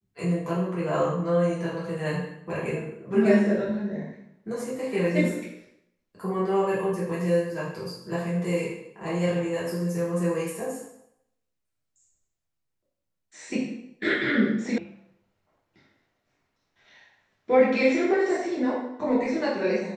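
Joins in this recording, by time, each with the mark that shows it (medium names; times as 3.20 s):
14.78 s: sound stops dead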